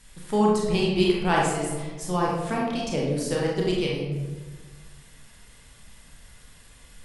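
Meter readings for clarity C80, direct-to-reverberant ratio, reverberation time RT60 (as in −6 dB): 3.5 dB, −4.0 dB, 1.4 s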